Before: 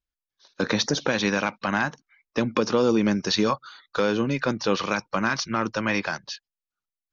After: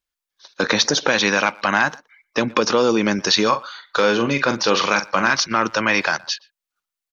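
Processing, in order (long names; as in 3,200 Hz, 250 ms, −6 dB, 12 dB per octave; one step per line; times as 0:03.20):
low-shelf EQ 320 Hz −12 dB
in parallel at +1 dB: output level in coarse steps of 18 dB
0:03.48–0:05.31: on the sum: double-tracking delay 43 ms −9 dB
far-end echo of a speakerphone 120 ms, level −23 dB
level +6 dB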